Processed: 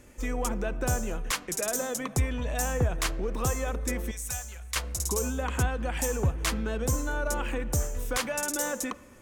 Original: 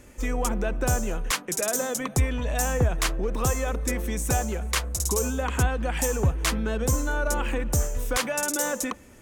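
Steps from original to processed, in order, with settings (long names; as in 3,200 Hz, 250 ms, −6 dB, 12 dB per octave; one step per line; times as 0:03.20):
0:04.11–0:04.76: guitar amp tone stack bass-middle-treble 10-0-10
on a send: convolution reverb RT60 1.8 s, pre-delay 6 ms, DRR 18.5 dB
on the sum: level −3.5 dB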